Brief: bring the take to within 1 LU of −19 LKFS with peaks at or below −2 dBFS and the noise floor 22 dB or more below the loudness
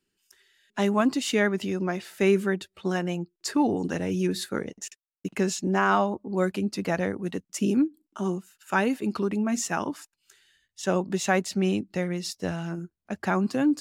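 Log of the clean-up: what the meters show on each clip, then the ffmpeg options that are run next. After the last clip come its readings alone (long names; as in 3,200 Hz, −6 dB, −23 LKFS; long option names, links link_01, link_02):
integrated loudness −27.0 LKFS; sample peak −9.0 dBFS; target loudness −19.0 LKFS
→ -af "volume=8dB,alimiter=limit=-2dB:level=0:latency=1"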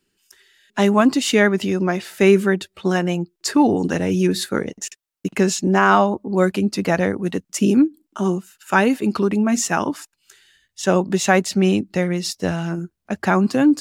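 integrated loudness −19.0 LKFS; sample peak −2.0 dBFS; background noise floor −75 dBFS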